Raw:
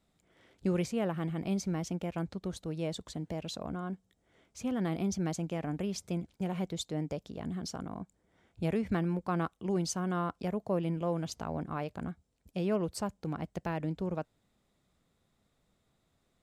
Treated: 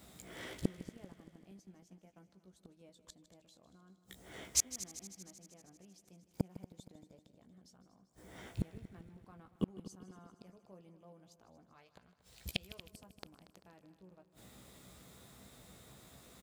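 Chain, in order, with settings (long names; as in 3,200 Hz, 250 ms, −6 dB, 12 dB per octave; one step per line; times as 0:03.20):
high-pass filter 51 Hz 12 dB per octave
double-tracking delay 16 ms −6 dB
gate with flip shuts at −34 dBFS, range −42 dB
high-shelf EQ 8,400 Hz +11.5 dB
echo machine with several playback heads 78 ms, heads second and third, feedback 59%, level −15.5 dB
0:01.55–0:02.19: transient designer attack +4 dB, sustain −5 dB
0:11.73–0:12.91: octave-band graphic EQ 250/2,000/4,000 Hz −9/+5/+9 dB
level +15 dB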